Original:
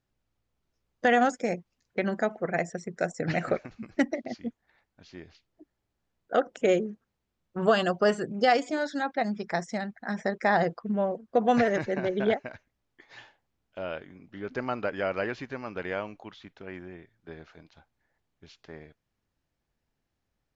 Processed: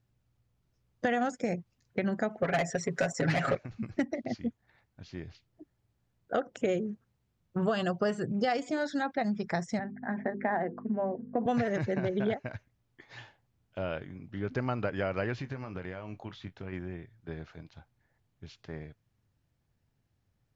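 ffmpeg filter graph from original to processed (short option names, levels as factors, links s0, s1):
-filter_complex "[0:a]asettb=1/sr,asplit=3[s0][s1][s2];[s0]atrim=end=2.424[s3];[s1]atrim=start=2.42:end=3.55,asetpts=PTS-STARTPTS,afade=t=in:d=0.004:c=qsin,afade=t=out:st=1.126:d=0.004:c=qsin,asplit=2[s4][s5];[s5]highpass=f=720:p=1,volume=8.91,asoftclip=type=tanh:threshold=0.237[s6];[s4][s6]amix=inputs=2:normalize=0,lowpass=f=4900:p=1,volume=0.501,aecho=1:1:7.3:0.73,atrim=end_sample=49833[s7];[s2]atrim=start=3.546[s8];[s3][s7]acrossfade=d=0.004:c1=hsin:c2=qsin[s9];[s9][s8]acrossfade=d=0.004:c1=qsin:c2=hsin,asettb=1/sr,asplit=3[s10][s11][s12];[s10]atrim=end=9.794[s13];[s11]atrim=start=9.79:end=11.46,asetpts=PTS-STARTPTS,afade=t=in:d=0.004:c=qsin,afade=t=out:st=1.666:d=0.004:c=qsin,bandreject=f=50:t=h:w=6,bandreject=f=100:t=h:w=6,bandreject=f=150:t=h:w=6,bandreject=f=200:t=h:w=6,bandreject=f=250:t=h:w=6,bandreject=f=300:t=h:w=6,bandreject=f=350:t=h:w=6,bandreject=f=400:t=h:w=6,bandreject=f=450:t=h:w=6,bandreject=f=500:t=h:w=6,aeval=exprs='val(0)+0.0126*(sin(2*PI*50*n/s)+sin(2*PI*2*50*n/s)/2+sin(2*PI*3*50*n/s)/3+sin(2*PI*4*50*n/s)/4+sin(2*PI*5*50*n/s)/5)':c=same,highpass=f=240:w=0.5412,highpass=f=240:w=1.3066,equalizer=f=240:t=q:w=4:g=7,equalizer=f=510:t=q:w=4:g=-5,equalizer=f=1300:t=q:w=4:g=-7,lowpass=f=2000:w=0.5412,lowpass=f=2000:w=1.3066[s14];[s12]atrim=start=11.456[s15];[s13][s14]acrossfade=d=0.004:c1=hsin:c2=qsin[s16];[s16][s15]acrossfade=d=0.004:c1=qsin:c2=hsin,asettb=1/sr,asplit=3[s17][s18][s19];[s17]atrim=end=15.384[s20];[s18]atrim=start=15.38:end=16.73,asetpts=PTS-STARTPTS,afade=t=in:d=0.004:c=qsin,afade=t=out:st=1.346:d=0.004:c=qsin,acompressor=threshold=0.0126:ratio=6:attack=3.2:release=140:knee=1:detection=peak,asplit=2[s21][s22];[s22]adelay=22,volume=0.282[s23];[s21][s23]amix=inputs=2:normalize=0,atrim=end_sample=59535[s24];[s19]atrim=start=16.726[s25];[s20][s24]acrossfade=d=0.004:c1=hsin:c2=qsin[s26];[s26][s25]acrossfade=d=0.004:c1=qsin:c2=hsin,equalizer=f=110:t=o:w=1.3:g=13,acompressor=threshold=0.0398:ratio=3"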